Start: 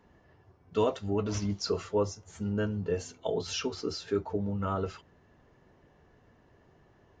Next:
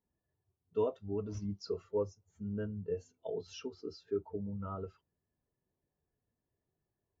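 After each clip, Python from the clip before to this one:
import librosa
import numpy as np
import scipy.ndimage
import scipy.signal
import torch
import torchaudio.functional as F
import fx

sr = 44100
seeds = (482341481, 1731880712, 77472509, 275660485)

y = fx.spectral_expand(x, sr, expansion=1.5)
y = F.gain(torch.from_numpy(y), -6.5).numpy()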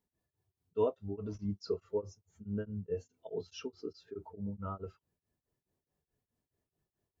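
y = x * np.abs(np.cos(np.pi * 4.7 * np.arange(len(x)) / sr))
y = F.gain(torch.from_numpy(y), 3.0).numpy()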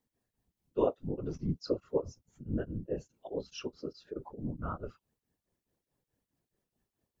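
y = fx.whisperise(x, sr, seeds[0])
y = F.gain(torch.from_numpy(y), 2.5).numpy()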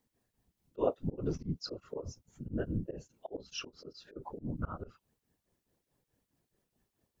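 y = fx.auto_swell(x, sr, attack_ms=167.0)
y = F.gain(torch.from_numpy(y), 4.0).numpy()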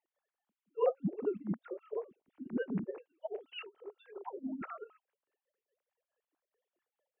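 y = fx.sine_speech(x, sr)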